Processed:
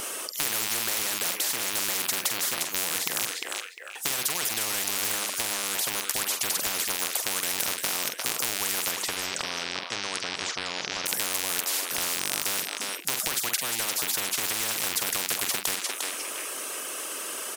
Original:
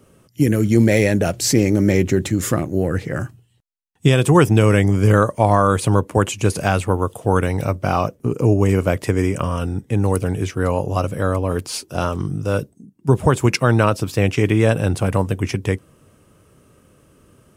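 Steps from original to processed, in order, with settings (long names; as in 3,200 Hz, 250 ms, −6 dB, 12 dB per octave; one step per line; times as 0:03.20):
loose part that buzzes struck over −22 dBFS, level −16 dBFS
0:08.91–0:11.06: low-pass filter 4,000 Hz 24 dB per octave
reverb reduction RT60 0.54 s
high-pass filter 410 Hz 24 dB per octave
high-shelf EQ 2,000 Hz +11.5 dB
downward compressor 3 to 1, threshold −21 dBFS, peak gain reduction 11 dB
double-tracking delay 45 ms −12 dB
feedback echo with a high-pass in the loop 352 ms, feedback 15%, high-pass 560 Hz, level −17 dB
every bin compressed towards the loudest bin 10 to 1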